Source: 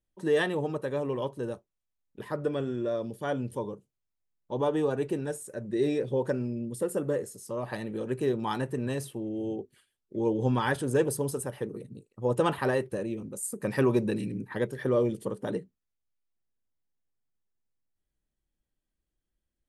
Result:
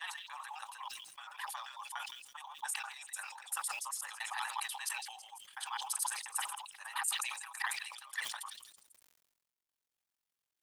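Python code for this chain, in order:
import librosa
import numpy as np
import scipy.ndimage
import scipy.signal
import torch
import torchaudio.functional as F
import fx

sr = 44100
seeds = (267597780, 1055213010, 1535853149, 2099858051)

y = fx.block_reorder(x, sr, ms=181.0, group=3)
y = fx.hpss(y, sr, part='percussive', gain_db=6)
y = fx.over_compress(y, sr, threshold_db=-32.0, ratio=-1.0)
y = fx.stretch_grains(y, sr, factor=0.54, grain_ms=45.0)
y = scipy.signal.sosfilt(scipy.signal.cheby1(6, 3, 790.0, 'highpass', fs=sr, output='sos'), y)
y = fx.echo_stepped(y, sr, ms=165, hz=3800.0, octaves=0.7, feedback_pct=70, wet_db=-11.0)
y = fx.quant_companded(y, sr, bits=8)
y = fx.sustainer(y, sr, db_per_s=54.0)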